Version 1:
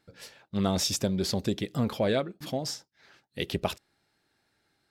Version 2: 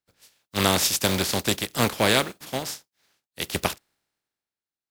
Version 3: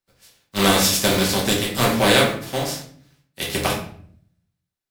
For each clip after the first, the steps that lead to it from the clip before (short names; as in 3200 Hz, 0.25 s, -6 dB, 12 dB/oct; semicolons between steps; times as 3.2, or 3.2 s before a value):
spectral contrast lowered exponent 0.41; three-band expander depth 70%; gain +4 dB
shoebox room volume 80 m³, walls mixed, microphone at 1.1 m